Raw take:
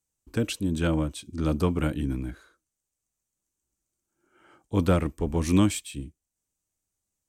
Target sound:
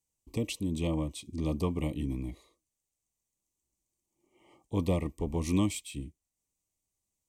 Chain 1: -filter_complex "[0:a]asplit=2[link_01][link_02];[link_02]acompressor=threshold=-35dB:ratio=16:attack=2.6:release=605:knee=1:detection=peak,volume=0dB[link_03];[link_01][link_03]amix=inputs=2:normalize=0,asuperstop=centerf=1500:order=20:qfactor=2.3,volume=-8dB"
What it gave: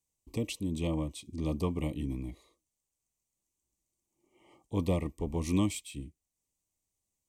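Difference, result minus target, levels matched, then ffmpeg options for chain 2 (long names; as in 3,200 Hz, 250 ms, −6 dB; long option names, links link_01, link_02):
downward compressor: peak gain reduction +6.5 dB
-filter_complex "[0:a]asplit=2[link_01][link_02];[link_02]acompressor=threshold=-28dB:ratio=16:attack=2.6:release=605:knee=1:detection=peak,volume=0dB[link_03];[link_01][link_03]amix=inputs=2:normalize=0,asuperstop=centerf=1500:order=20:qfactor=2.3,volume=-8dB"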